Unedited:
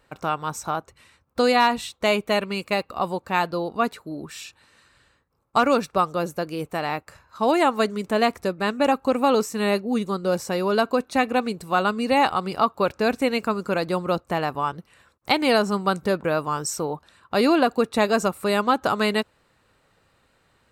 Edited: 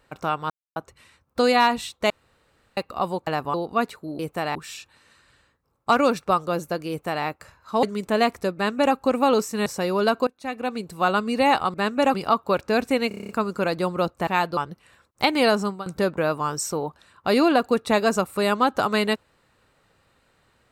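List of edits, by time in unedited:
0:00.50–0:00.76: silence
0:02.10–0:02.77: fill with room tone
0:03.27–0:03.57: swap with 0:14.37–0:14.64
0:06.56–0:06.92: duplicate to 0:04.22
0:07.50–0:07.84: remove
0:08.56–0:08.96: duplicate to 0:12.45
0:09.67–0:10.37: remove
0:10.98–0:11.75: fade in, from −23.5 dB
0:13.39: stutter 0.03 s, 8 plays
0:15.68–0:15.93: fade out, to −21.5 dB

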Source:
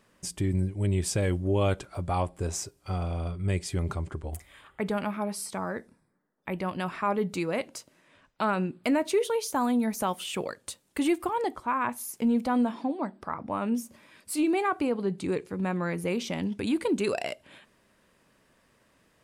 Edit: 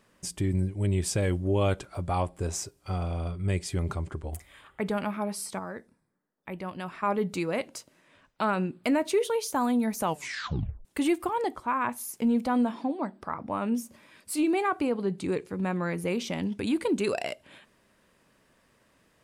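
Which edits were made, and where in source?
0:05.59–0:07.03: clip gain −5 dB
0:10.02: tape stop 0.83 s

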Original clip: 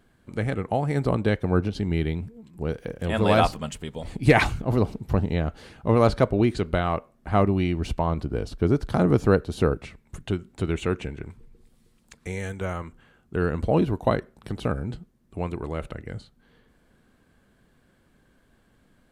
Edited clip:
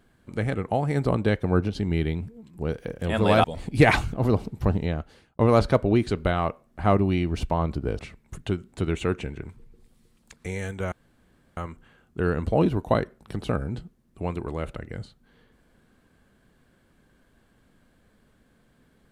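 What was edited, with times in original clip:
0:03.44–0:03.92: remove
0:05.24–0:05.87: fade out
0:08.47–0:09.80: remove
0:12.73: splice in room tone 0.65 s

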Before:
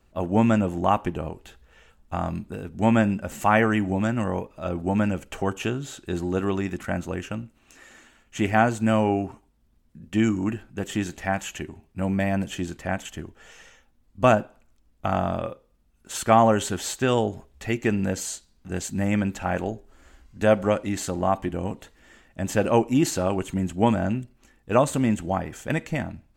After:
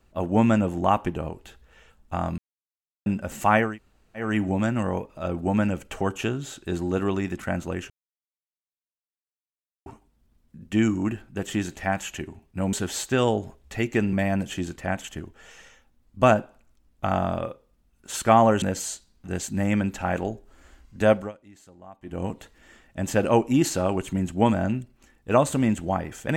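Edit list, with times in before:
0:02.38–0:03.06: silence
0:03.67: splice in room tone 0.59 s, crossfade 0.24 s
0:07.31–0:09.27: silence
0:16.63–0:18.03: move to 0:12.14
0:20.53–0:21.63: duck −23 dB, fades 0.20 s

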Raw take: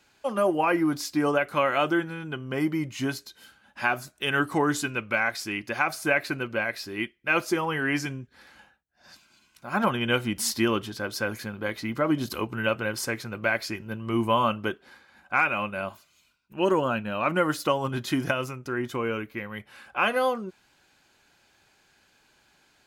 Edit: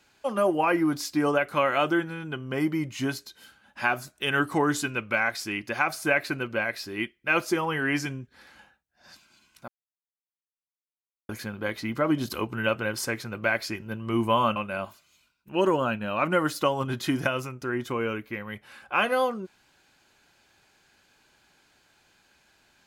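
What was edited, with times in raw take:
0:09.68–0:11.29: silence
0:14.56–0:15.60: remove

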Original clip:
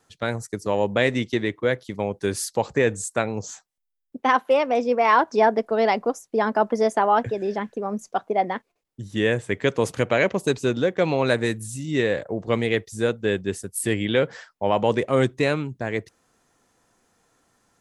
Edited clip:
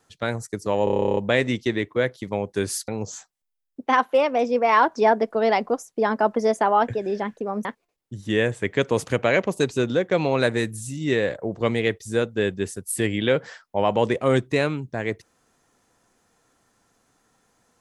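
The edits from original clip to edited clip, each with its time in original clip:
0:00.84: stutter 0.03 s, 12 plays
0:02.55–0:03.24: remove
0:08.01–0:08.52: remove

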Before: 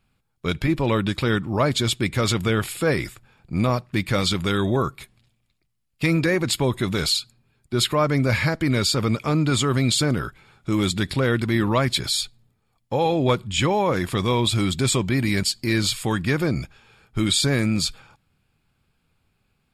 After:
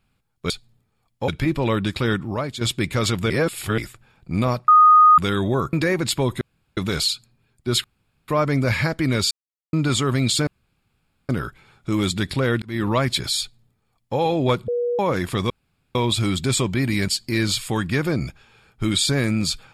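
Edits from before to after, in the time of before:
0:01.46–0:01.83: fade out quadratic, to −10 dB
0:02.52–0:03.00: reverse
0:03.90–0:04.40: beep over 1,240 Hz −8 dBFS
0:04.95–0:06.15: remove
0:06.83: splice in room tone 0.36 s
0:07.90: splice in room tone 0.44 s
0:08.93–0:09.35: silence
0:10.09: splice in room tone 0.82 s
0:11.42–0:11.67: fade in
0:12.20–0:12.98: duplicate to 0:00.50
0:13.48–0:13.79: beep over 482 Hz −19.5 dBFS
0:14.30: splice in room tone 0.45 s

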